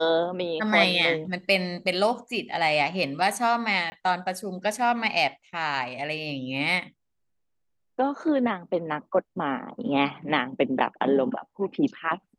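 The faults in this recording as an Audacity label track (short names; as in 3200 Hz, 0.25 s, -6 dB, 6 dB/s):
3.900000	3.920000	gap 20 ms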